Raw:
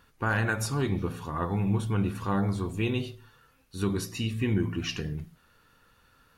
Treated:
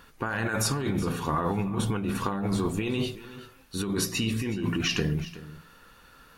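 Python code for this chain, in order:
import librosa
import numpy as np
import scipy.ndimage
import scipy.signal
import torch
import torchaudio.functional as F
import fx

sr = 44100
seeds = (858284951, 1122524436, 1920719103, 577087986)

y = fx.peak_eq(x, sr, hz=93.0, db=-9.0, octaves=0.74)
y = fx.over_compress(y, sr, threshold_db=-33.0, ratio=-1.0)
y = y + 10.0 ** (-16.5 / 20.0) * np.pad(y, (int(372 * sr / 1000.0), 0))[:len(y)]
y = F.gain(torch.from_numpy(y), 5.5).numpy()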